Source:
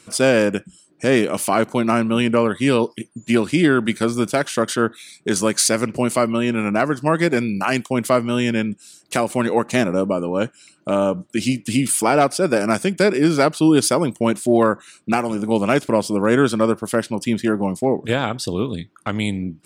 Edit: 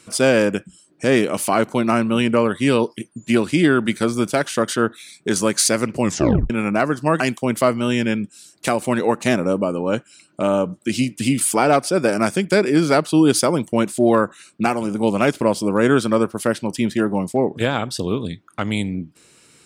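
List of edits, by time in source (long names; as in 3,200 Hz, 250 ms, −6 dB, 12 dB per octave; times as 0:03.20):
0:06.01: tape stop 0.49 s
0:07.20–0:07.68: remove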